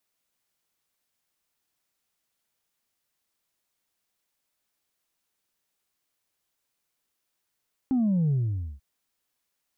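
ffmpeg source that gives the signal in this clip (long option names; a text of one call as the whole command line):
ffmpeg -f lavfi -i "aevalsrc='0.0891*clip((0.89-t)/0.49,0,1)*tanh(1.12*sin(2*PI*270*0.89/log(65/270)*(exp(log(65/270)*t/0.89)-1)))/tanh(1.12)':duration=0.89:sample_rate=44100" out.wav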